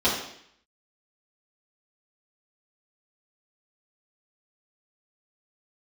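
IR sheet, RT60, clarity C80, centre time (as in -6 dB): 0.65 s, 7.0 dB, 41 ms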